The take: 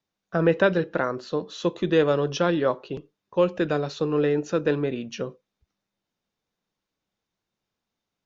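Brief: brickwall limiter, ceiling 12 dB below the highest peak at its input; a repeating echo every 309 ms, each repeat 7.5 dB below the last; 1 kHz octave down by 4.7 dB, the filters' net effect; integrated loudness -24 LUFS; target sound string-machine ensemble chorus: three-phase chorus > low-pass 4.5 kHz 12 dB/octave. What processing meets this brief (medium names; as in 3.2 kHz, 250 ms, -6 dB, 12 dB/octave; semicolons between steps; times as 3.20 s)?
peaking EQ 1 kHz -6.5 dB; peak limiter -21.5 dBFS; feedback delay 309 ms, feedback 42%, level -7.5 dB; three-phase chorus; low-pass 4.5 kHz 12 dB/octave; trim +11 dB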